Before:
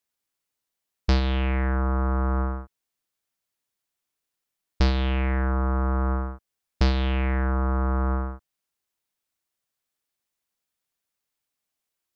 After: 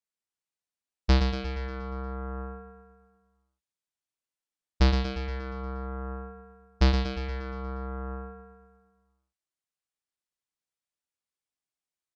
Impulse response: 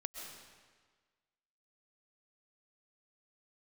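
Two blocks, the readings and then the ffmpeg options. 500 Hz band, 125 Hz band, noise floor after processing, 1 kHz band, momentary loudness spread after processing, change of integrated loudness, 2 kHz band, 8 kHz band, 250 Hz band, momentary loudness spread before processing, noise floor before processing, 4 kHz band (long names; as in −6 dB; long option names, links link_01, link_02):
−4.0 dB, −5.5 dB, below −85 dBFS, −6.5 dB, 17 LU, −5.0 dB, −5.5 dB, can't be measured, −5.0 dB, 9 LU, −84 dBFS, −1.0 dB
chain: -filter_complex "[0:a]agate=range=-11dB:threshold=-21dB:ratio=16:detection=peak,asplit=2[link_01][link_02];[link_02]aecho=0:1:118|236|354|472|590|708|826|944:0.501|0.296|0.174|0.103|0.0607|0.0358|0.0211|0.0125[link_03];[link_01][link_03]amix=inputs=2:normalize=0,aresample=22050,aresample=44100"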